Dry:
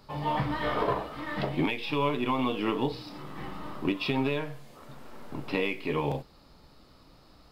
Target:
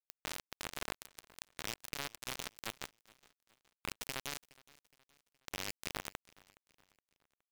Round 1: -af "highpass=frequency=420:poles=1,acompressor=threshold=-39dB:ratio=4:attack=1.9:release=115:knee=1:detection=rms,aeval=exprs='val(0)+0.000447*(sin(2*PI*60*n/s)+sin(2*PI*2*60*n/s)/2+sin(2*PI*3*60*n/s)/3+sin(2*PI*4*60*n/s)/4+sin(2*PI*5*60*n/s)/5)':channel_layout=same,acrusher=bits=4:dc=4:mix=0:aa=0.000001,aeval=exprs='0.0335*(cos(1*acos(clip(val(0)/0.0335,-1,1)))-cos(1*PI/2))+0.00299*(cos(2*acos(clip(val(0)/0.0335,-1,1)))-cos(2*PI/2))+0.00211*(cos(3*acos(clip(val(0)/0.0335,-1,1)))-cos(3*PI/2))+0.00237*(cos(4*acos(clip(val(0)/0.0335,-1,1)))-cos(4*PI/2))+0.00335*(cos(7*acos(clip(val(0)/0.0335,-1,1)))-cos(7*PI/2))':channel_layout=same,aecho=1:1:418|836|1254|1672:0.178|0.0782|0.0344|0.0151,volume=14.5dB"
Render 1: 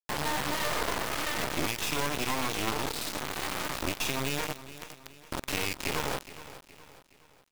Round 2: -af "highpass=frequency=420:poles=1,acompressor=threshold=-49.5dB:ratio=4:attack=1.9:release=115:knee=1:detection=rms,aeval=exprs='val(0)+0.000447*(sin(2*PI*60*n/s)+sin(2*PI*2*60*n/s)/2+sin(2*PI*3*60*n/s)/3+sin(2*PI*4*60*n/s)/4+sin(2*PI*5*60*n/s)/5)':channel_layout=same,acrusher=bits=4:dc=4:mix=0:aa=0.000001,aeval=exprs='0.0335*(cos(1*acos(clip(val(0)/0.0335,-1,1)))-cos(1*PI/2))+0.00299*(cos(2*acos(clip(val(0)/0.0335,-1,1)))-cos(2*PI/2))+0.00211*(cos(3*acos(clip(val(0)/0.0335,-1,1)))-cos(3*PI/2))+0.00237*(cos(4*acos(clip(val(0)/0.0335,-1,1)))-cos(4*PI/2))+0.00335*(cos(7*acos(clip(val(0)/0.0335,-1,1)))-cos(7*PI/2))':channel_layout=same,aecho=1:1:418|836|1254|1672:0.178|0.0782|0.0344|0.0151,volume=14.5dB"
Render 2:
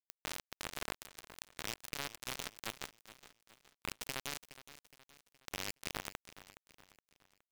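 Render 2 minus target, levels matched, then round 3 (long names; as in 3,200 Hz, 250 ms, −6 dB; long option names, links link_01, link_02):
echo-to-direct +8 dB
-af "highpass=frequency=420:poles=1,acompressor=threshold=-49.5dB:ratio=4:attack=1.9:release=115:knee=1:detection=rms,aeval=exprs='val(0)+0.000447*(sin(2*PI*60*n/s)+sin(2*PI*2*60*n/s)/2+sin(2*PI*3*60*n/s)/3+sin(2*PI*4*60*n/s)/4+sin(2*PI*5*60*n/s)/5)':channel_layout=same,acrusher=bits=4:dc=4:mix=0:aa=0.000001,aeval=exprs='0.0335*(cos(1*acos(clip(val(0)/0.0335,-1,1)))-cos(1*PI/2))+0.00299*(cos(2*acos(clip(val(0)/0.0335,-1,1)))-cos(2*PI/2))+0.00211*(cos(3*acos(clip(val(0)/0.0335,-1,1)))-cos(3*PI/2))+0.00237*(cos(4*acos(clip(val(0)/0.0335,-1,1)))-cos(4*PI/2))+0.00335*(cos(7*acos(clip(val(0)/0.0335,-1,1)))-cos(7*PI/2))':channel_layout=same,aecho=1:1:418|836|1254:0.0708|0.0311|0.0137,volume=14.5dB"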